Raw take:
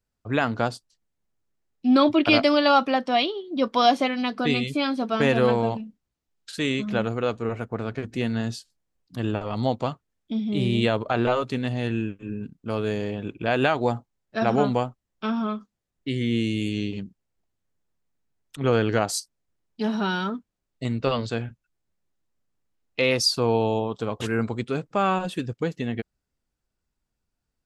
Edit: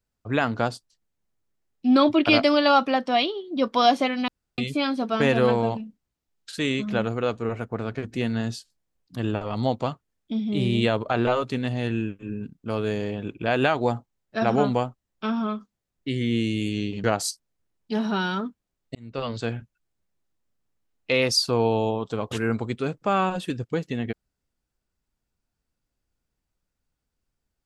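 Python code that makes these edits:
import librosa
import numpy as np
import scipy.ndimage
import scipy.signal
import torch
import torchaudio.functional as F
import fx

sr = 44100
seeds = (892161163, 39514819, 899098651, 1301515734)

y = fx.edit(x, sr, fx.room_tone_fill(start_s=4.28, length_s=0.3),
    fx.cut(start_s=17.04, length_s=1.89),
    fx.fade_in_span(start_s=20.84, length_s=0.52), tone=tone)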